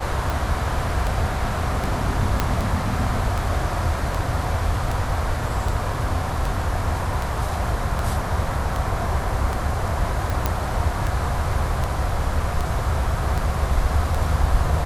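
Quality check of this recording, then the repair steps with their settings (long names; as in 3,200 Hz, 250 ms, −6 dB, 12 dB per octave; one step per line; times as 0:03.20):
scratch tick 78 rpm
0:02.40: click −5 dBFS
0:10.46: click −6 dBFS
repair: click removal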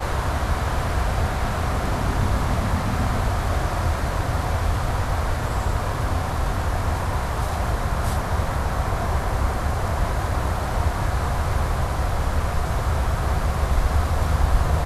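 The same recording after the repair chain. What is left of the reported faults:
0:02.40: click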